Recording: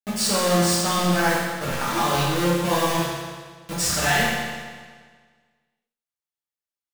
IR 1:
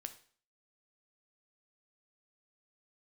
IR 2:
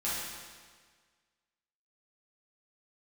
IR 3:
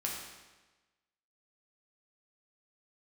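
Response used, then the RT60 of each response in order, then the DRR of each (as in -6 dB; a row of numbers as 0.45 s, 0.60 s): 2; 0.45 s, 1.6 s, 1.2 s; 8.0 dB, -10.5 dB, -3.0 dB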